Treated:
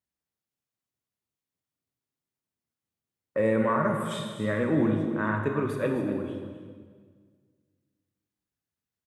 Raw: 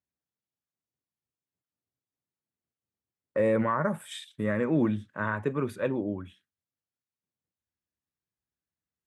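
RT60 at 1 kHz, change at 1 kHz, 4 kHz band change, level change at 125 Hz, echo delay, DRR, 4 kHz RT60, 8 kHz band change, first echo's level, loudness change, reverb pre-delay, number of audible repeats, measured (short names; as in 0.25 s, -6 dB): 1.6 s, +2.0 dB, +2.0 dB, +2.5 dB, 0.26 s, 2.5 dB, 1.5 s, +2.0 dB, -12.0 dB, +1.5 dB, 24 ms, 1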